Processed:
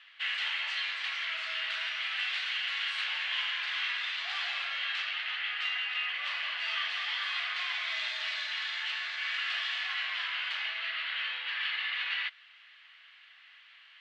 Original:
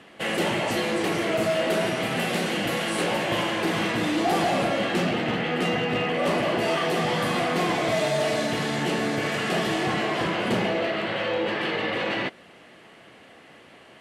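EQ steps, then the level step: HPF 1400 Hz 24 dB/oct; synth low-pass 3700 Hz, resonance Q 1.8; air absorption 52 m; -4.5 dB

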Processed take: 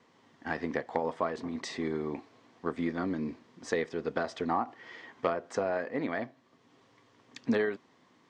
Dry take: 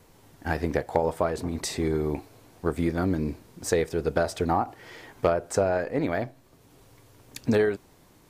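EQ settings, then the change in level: speaker cabinet 170–6300 Hz, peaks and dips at 240 Hz +7 dB, 590 Hz +4 dB, 1100 Hz +8 dB, 1900 Hz +8 dB, 3200 Hz +5 dB; notch 590 Hz, Q 12; -8.0 dB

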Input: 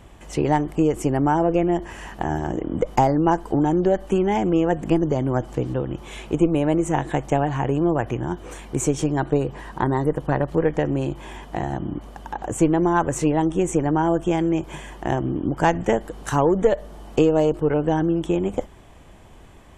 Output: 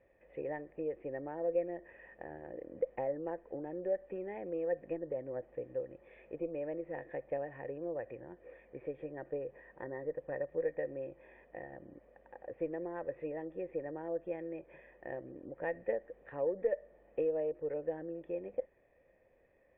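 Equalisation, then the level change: vocal tract filter e; air absorption 80 m; low shelf 260 Hz -6.5 dB; -5.0 dB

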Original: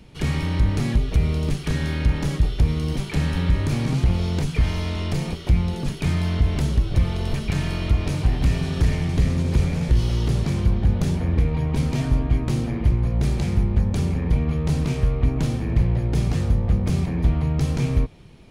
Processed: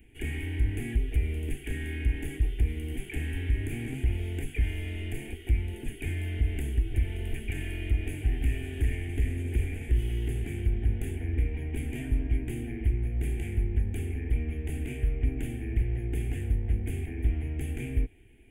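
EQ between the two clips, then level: high shelf 4700 Hz +6 dB; fixed phaser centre 840 Hz, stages 8; fixed phaser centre 2400 Hz, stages 4; -5.0 dB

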